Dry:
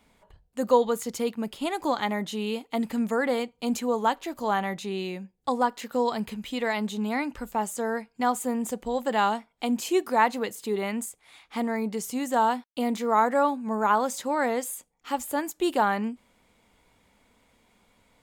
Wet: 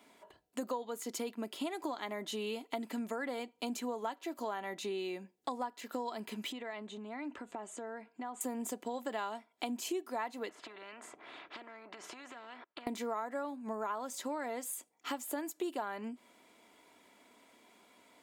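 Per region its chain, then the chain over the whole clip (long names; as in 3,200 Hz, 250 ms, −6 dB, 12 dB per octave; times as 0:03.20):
0:06.52–0:08.41: low-pass filter 7,300 Hz 24 dB per octave + downward compressor 5 to 1, threshold −41 dBFS + parametric band 5,300 Hz −12.5 dB 0.78 octaves
0:10.49–0:12.87: low-pass filter 1,200 Hz + downward compressor 16 to 1, threshold −37 dBFS + every bin compressed towards the loudest bin 4 to 1
whole clip: Chebyshev high-pass filter 290 Hz, order 2; comb filter 3 ms, depth 39%; downward compressor 6 to 1, threshold −38 dBFS; level +2 dB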